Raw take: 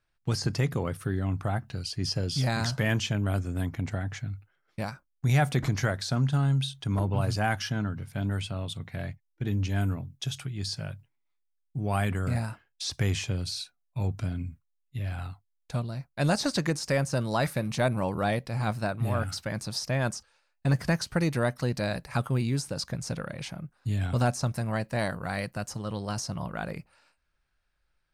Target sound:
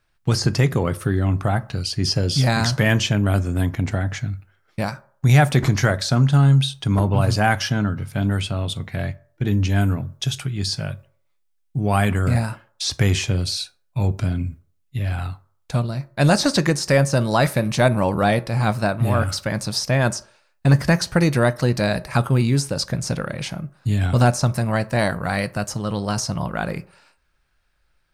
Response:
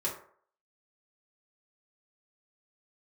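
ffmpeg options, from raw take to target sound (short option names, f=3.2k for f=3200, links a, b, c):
-filter_complex "[0:a]asplit=2[a][b];[1:a]atrim=start_sample=2205,adelay=14[c];[b][c]afir=irnorm=-1:irlink=0,volume=-20dB[d];[a][d]amix=inputs=2:normalize=0,volume=9dB"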